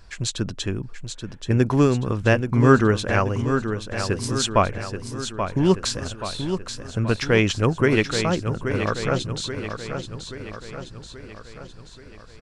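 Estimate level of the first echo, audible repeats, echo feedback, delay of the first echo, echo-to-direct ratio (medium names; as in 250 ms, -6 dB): -8.0 dB, 6, 54%, 830 ms, -6.5 dB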